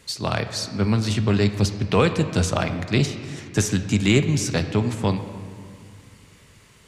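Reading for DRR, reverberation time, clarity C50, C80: 8.0 dB, 2.2 s, 9.5 dB, 10.5 dB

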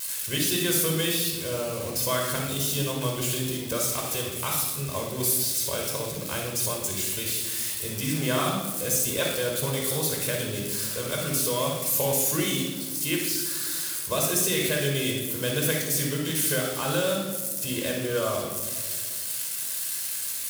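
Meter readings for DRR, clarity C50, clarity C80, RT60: −0.5 dB, 2.0 dB, 5.5 dB, 1.7 s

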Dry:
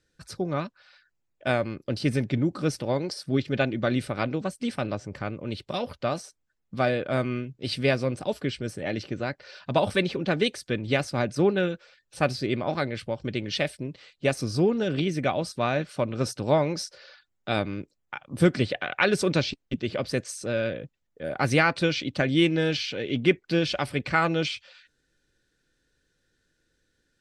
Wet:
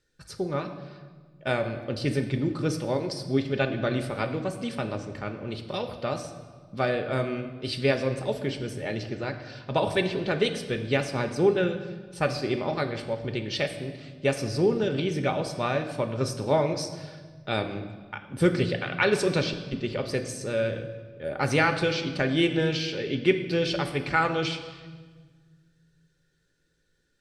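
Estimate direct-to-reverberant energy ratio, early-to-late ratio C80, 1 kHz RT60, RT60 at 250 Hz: 6.5 dB, 11.0 dB, 1.4 s, 2.2 s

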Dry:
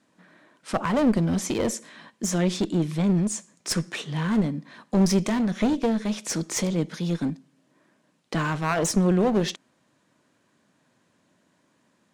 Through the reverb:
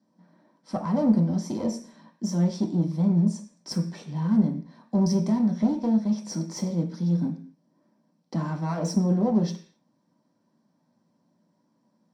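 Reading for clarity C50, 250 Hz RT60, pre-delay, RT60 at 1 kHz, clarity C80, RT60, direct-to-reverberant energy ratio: 11.0 dB, 0.55 s, 3 ms, 0.45 s, 15.5 dB, 0.45 s, 1.5 dB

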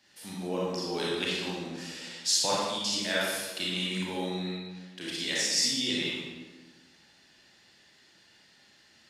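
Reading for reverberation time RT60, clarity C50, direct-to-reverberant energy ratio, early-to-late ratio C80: 1.3 s, −2.5 dB, −6.0 dB, 1.0 dB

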